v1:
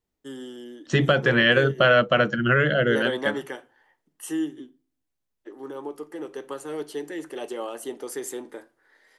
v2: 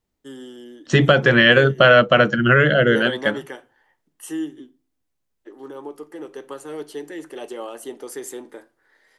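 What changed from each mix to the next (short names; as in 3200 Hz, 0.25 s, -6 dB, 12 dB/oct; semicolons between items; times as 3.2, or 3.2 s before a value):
second voice +5.5 dB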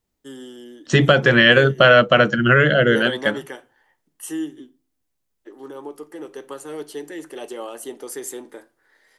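master: add high shelf 5500 Hz +5 dB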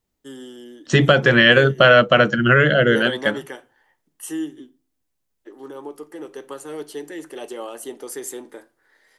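none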